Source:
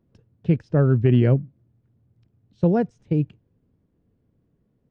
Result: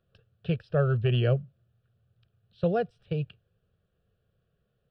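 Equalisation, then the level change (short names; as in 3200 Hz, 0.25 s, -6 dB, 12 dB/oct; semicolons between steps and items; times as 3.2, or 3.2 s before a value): bell 2400 Hz +13 dB 2.8 oct; dynamic EQ 1600 Hz, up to -6 dB, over -38 dBFS, Q 1.3; fixed phaser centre 1400 Hz, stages 8; -4.5 dB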